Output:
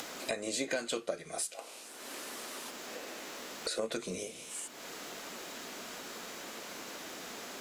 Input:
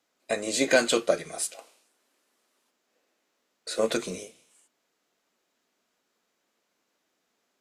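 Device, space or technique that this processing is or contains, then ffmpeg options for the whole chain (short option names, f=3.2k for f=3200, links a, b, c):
upward and downward compression: -af "acompressor=mode=upward:threshold=-30dB:ratio=2.5,acompressor=threshold=-42dB:ratio=4,volume=6.5dB"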